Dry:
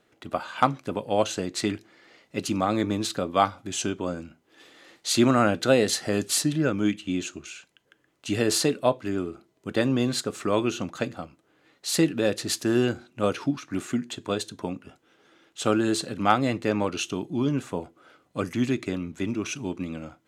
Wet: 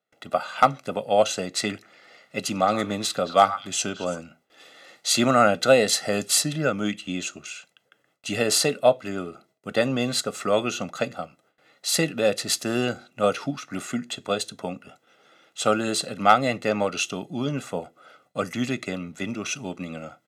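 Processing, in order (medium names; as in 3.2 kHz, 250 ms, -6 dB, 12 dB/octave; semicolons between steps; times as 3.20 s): high-pass 180 Hz 12 dB/octave; gate with hold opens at -54 dBFS; comb 1.5 ms, depth 60%; overload inside the chain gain 6.5 dB; 1.71–4.18 s: repeats whose band climbs or falls 111 ms, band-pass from 1.3 kHz, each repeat 1.4 oct, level -9 dB; trim +2 dB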